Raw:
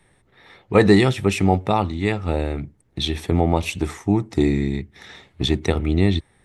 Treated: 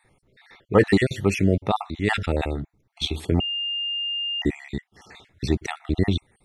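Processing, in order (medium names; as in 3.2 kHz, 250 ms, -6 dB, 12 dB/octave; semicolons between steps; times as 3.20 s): random holes in the spectrogram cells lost 42%; 2.02–2.54 s: decay stretcher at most 60 dB/s; 3.40–4.42 s: bleep 2.81 kHz -23 dBFS; trim -1.5 dB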